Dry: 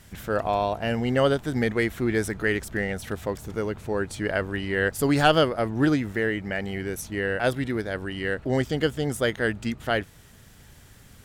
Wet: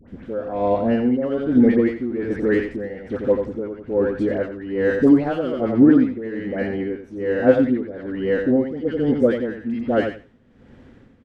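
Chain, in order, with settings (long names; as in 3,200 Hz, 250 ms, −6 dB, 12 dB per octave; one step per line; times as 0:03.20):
low-pass filter 2,300 Hz 12 dB per octave
hum removal 54.19 Hz, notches 3
in parallel at −5 dB: soft clipping −24 dBFS, distortion −8 dB
on the sum: parametric band 340 Hz +9 dB 1.2 octaves
hollow resonant body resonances 250/510 Hz, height 11 dB, ringing for 70 ms
all-pass dispersion highs, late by 83 ms, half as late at 1,100 Hz
on a send: repeating echo 89 ms, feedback 21%, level −6.5 dB
on the sum: amplitude tremolo 1.2 Hz, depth 74%
level −3.5 dB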